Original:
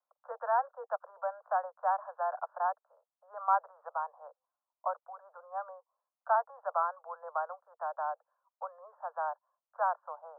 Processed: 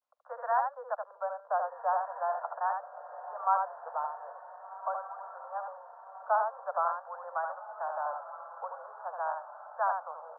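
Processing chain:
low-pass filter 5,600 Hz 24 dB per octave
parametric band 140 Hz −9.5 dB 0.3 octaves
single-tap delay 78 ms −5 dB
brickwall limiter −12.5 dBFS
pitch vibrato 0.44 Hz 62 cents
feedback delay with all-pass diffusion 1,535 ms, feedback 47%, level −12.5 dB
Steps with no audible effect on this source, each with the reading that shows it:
low-pass filter 5,600 Hz: nothing at its input above 1,700 Hz
parametric band 140 Hz: nothing at its input below 450 Hz
brickwall limiter −12.5 dBFS: peak of its input −15.5 dBFS

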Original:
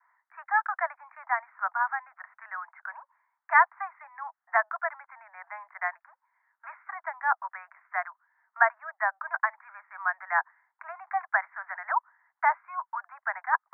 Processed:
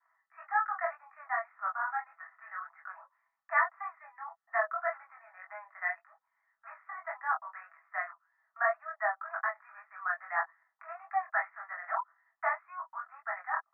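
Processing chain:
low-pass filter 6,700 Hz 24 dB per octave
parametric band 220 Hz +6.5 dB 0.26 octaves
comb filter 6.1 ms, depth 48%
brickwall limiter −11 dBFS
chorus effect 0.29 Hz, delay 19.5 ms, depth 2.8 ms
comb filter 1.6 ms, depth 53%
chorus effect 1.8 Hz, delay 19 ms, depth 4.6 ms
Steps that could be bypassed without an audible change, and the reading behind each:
low-pass filter 6,700 Hz: nothing at its input above 2,400 Hz
parametric band 220 Hz: nothing at its input below 570 Hz

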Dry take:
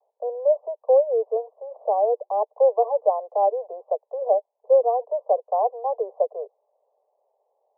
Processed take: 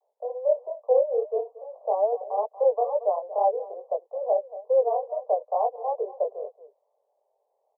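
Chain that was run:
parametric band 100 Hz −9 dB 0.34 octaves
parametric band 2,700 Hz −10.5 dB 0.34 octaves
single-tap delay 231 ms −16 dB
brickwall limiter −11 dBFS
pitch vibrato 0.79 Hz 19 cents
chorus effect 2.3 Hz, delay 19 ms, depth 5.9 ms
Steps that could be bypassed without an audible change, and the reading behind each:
parametric band 100 Hz: nothing at its input below 380 Hz
parametric band 2,700 Hz: nothing at its input above 1,100 Hz

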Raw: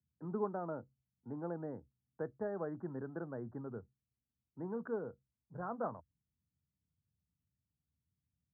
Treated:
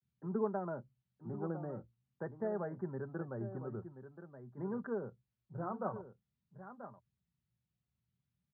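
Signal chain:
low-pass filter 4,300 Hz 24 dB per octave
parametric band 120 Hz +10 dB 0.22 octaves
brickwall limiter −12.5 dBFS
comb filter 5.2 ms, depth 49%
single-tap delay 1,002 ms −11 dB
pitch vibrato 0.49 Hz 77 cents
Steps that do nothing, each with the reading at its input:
low-pass filter 4,300 Hz: nothing at its input above 1,700 Hz
brickwall limiter −12.5 dBFS: peak of its input −24.5 dBFS

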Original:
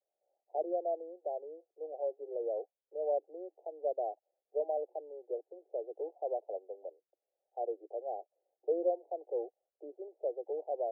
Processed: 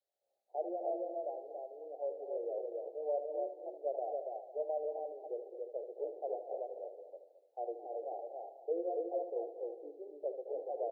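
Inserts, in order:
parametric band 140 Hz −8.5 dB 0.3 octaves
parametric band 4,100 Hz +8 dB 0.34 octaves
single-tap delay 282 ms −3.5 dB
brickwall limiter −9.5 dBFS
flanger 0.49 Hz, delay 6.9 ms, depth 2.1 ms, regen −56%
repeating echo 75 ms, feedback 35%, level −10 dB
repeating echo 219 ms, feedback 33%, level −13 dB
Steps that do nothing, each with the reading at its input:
parametric band 140 Hz: nothing at its input below 290 Hz
parametric band 4,100 Hz: nothing at its input above 910 Hz
brickwall limiter −9.5 dBFS: peak of its input −21.5 dBFS

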